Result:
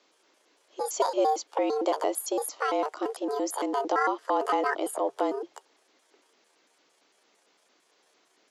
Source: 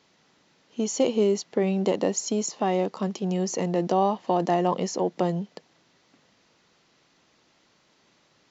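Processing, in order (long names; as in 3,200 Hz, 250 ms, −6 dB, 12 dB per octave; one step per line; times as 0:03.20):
pitch shifter gated in a rhythm +8 semitones, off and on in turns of 113 ms
frequency shifter +140 Hz
level −2.5 dB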